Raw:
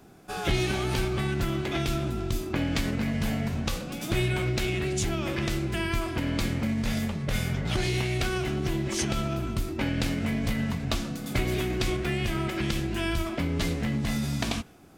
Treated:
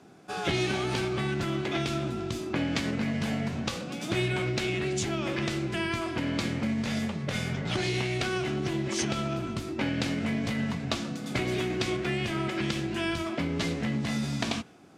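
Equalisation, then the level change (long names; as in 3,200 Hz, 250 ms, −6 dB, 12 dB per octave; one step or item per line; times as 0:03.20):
band-pass filter 130–7,700 Hz
0.0 dB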